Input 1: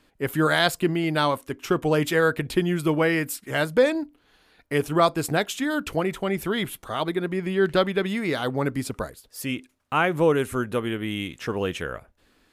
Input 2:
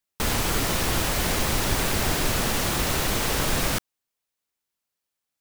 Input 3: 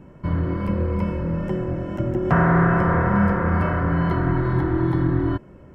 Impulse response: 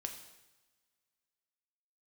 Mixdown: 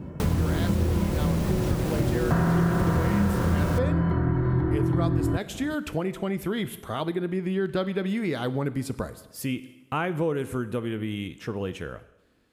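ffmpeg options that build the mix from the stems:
-filter_complex "[0:a]dynaudnorm=f=260:g=17:m=3.76,volume=0.251,asplit=2[s0][s1];[s1]volume=0.708[s2];[1:a]tiltshelf=f=970:g=4,volume=0.708,asplit=2[s3][s4];[s4]volume=0.237[s5];[2:a]volume=1.19[s6];[3:a]atrim=start_sample=2205[s7];[s2][s5]amix=inputs=2:normalize=0[s8];[s8][s7]afir=irnorm=-1:irlink=0[s9];[s0][s3][s6][s9]amix=inputs=4:normalize=0,highpass=43,lowshelf=f=410:g=8,acompressor=threshold=0.0501:ratio=2.5"

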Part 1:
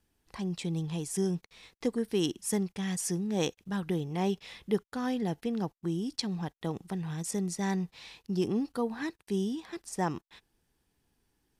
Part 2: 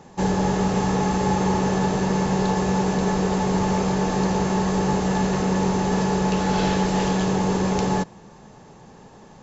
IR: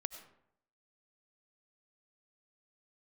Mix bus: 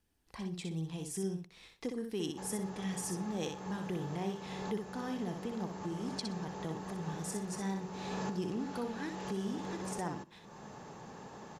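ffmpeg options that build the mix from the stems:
-filter_complex "[0:a]acompressor=threshold=0.0126:ratio=1.5,volume=0.531,asplit=4[s0][s1][s2][s3];[s1]volume=0.237[s4];[s2]volume=0.631[s5];[1:a]highpass=f=120:p=1,equalizer=f=1300:t=o:w=0.88:g=3.5,acompressor=threshold=0.0112:ratio=2,adelay=2200,volume=0.75[s6];[s3]apad=whole_len=512866[s7];[s6][s7]sidechaincompress=threshold=0.00447:ratio=8:attack=9.6:release=558[s8];[2:a]atrim=start_sample=2205[s9];[s4][s9]afir=irnorm=-1:irlink=0[s10];[s5]aecho=0:1:62|124|186:1|0.16|0.0256[s11];[s0][s8][s10][s11]amix=inputs=4:normalize=0"

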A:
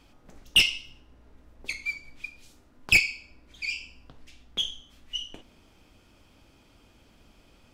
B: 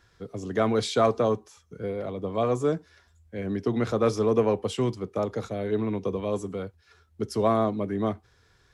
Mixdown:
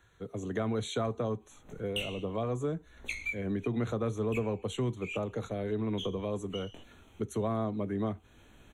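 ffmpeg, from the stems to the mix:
-filter_complex "[0:a]flanger=delay=16:depth=6.9:speed=0.67,adelay=1400,volume=1.33[s0];[1:a]volume=0.75,asplit=2[s1][s2];[s2]apad=whole_len=402712[s3];[s0][s3]sidechaincompress=threshold=0.00447:ratio=3:attack=37:release=198[s4];[s4][s1]amix=inputs=2:normalize=0,acrossover=split=200[s5][s6];[s6]acompressor=threshold=0.0251:ratio=4[s7];[s5][s7]amix=inputs=2:normalize=0,asuperstop=centerf=5000:order=12:qfactor=3"

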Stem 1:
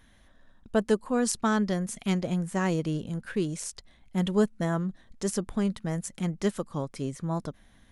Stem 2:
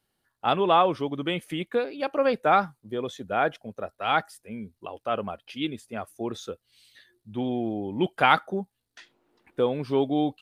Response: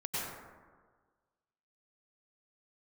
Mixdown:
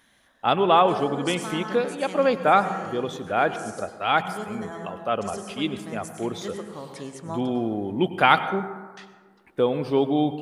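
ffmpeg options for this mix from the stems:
-filter_complex "[0:a]highpass=f=500:p=1,volume=1.19,asplit=2[s0][s1];[s1]volume=0.251[s2];[1:a]volume=1.19,asplit=3[s3][s4][s5];[s4]volume=0.178[s6];[s5]apad=whole_len=349152[s7];[s0][s7]sidechaincompress=threshold=0.0224:ratio=8:attack=6.9:release=1160[s8];[2:a]atrim=start_sample=2205[s9];[s2][s6]amix=inputs=2:normalize=0[s10];[s10][s9]afir=irnorm=-1:irlink=0[s11];[s8][s3][s11]amix=inputs=3:normalize=0"

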